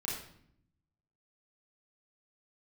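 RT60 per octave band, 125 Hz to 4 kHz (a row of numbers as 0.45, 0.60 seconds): 1.3, 1.1, 0.70, 0.60, 0.60, 0.55 seconds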